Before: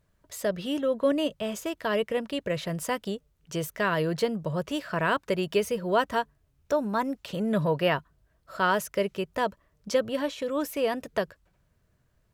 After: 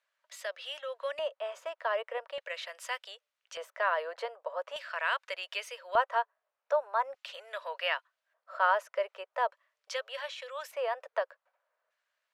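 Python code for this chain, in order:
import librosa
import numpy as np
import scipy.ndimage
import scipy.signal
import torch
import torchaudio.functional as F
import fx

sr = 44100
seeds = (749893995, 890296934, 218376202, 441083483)

y = scipy.signal.sosfilt(scipy.signal.ellip(4, 1.0, 60, 530.0, 'highpass', fs=sr, output='sos'), x)
y = fx.filter_lfo_bandpass(y, sr, shape='square', hz=0.42, low_hz=950.0, high_hz=2500.0, q=0.79)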